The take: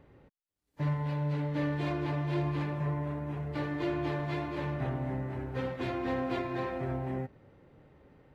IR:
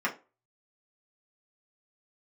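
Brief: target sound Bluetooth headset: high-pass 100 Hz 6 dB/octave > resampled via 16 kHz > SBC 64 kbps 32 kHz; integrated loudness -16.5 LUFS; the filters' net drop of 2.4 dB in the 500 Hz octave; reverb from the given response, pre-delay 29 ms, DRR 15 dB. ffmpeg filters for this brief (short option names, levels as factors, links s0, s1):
-filter_complex "[0:a]equalizer=f=500:t=o:g=-3,asplit=2[s0][s1];[1:a]atrim=start_sample=2205,adelay=29[s2];[s1][s2]afir=irnorm=-1:irlink=0,volume=0.0562[s3];[s0][s3]amix=inputs=2:normalize=0,highpass=f=100:p=1,aresample=16000,aresample=44100,volume=8.41" -ar 32000 -c:a sbc -b:a 64k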